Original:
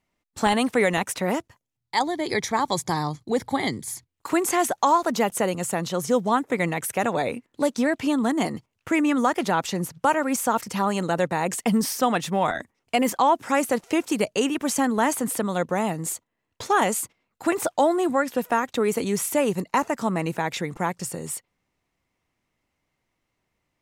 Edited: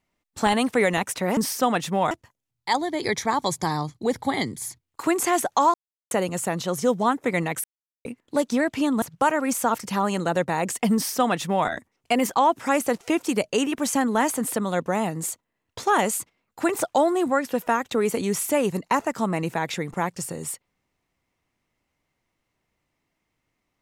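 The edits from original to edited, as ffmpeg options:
-filter_complex "[0:a]asplit=8[s0][s1][s2][s3][s4][s5][s6][s7];[s0]atrim=end=1.372[s8];[s1]atrim=start=11.768:end=12.512[s9];[s2]atrim=start=1.368:end=5,asetpts=PTS-STARTPTS,afade=t=out:st=3.628:d=0.004:c=hsin[s10];[s3]atrim=start=5:end=5.37,asetpts=PTS-STARTPTS,volume=0[s11];[s4]atrim=start=5.37:end=6.9,asetpts=PTS-STARTPTS,afade=t=in:d=0.004:c=hsin,afade=t=out:st=1.526:d=0.004:c=hsin[s12];[s5]atrim=start=6.9:end=7.31,asetpts=PTS-STARTPTS,volume=0[s13];[s6]atrim=start=7.31:end=8.282,asetpts=PTS-STARTPTS,afade=t=in:d=0.004:c=hsin[s14];[s7]atrim=start=9.848[s15];[s8][s9]acrossfade=d=0.004:c1=hsin:c2=hsin[s16];[s10][s11][s12][s13][s14]concat=n=5:v=0:a=1[s17];[s16][s17]acrossfade=d=0.004:c1=hsin:c2=hsin[s18];[s18][s15]acrossfade=d=0.004:c1=hsin:c2=hsin"

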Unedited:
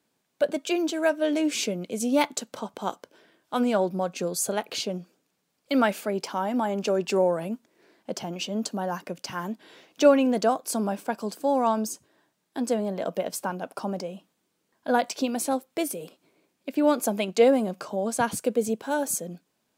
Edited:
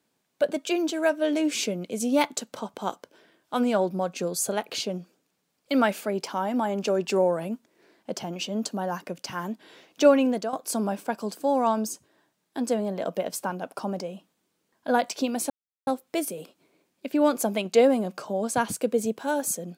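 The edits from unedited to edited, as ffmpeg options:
-filter_complex "[0:a]asplit=3[s0][s1][s2];[s0]atrim=end=10.53,asetpts=PTS-STARTPTS,afade=t=out:st=10.26:d=0.27:silence=0.223872[s3];[s1]atrim=start=10.53:end=15.5,asetpts=PTS-STARTPTS,afade=t=in:d=0.004:c=hsin:silence=0.223872,afade=t=out:st=4.966:d=0.004:c=hsin,apad=pad_dur=0.37[s4];[s2]atrim=start=15.5,asetpts=PTS-STARTPTS,afade=t=in:d=0.004:c=hsin[s5];[s3][s4][s5]concat=n=3:v=0:a=1"

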